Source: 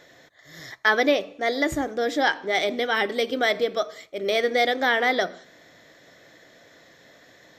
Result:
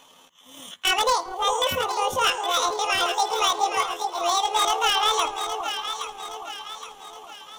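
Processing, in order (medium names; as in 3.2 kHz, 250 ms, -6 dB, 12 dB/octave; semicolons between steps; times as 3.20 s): rotating-head pitch shifter +9.5 st; wavefolder -14.5 dBFS; echo whose repeats swap between lows and highs 409 ms, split 1 kHz, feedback 68%, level -4.5 dB; trim +1 dB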